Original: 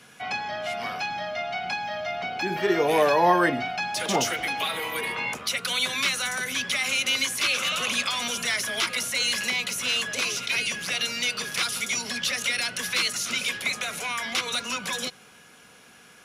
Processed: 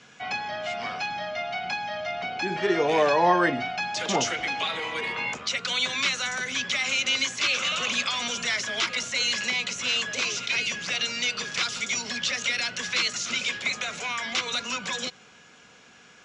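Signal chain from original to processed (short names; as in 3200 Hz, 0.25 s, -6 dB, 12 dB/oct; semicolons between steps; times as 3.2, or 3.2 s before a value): elliptic low-pass 7300 Hz, stop band 60 dB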